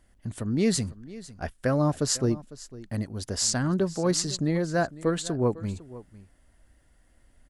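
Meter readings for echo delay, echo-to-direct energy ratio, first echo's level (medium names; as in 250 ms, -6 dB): 502 ms, -18.0 dB, -18.0 dB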